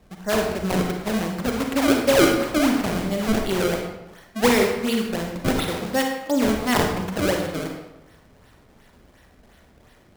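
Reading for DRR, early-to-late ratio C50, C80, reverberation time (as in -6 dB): 2.0 dB, 4.0 dB, 6.0 dB, 1.0 s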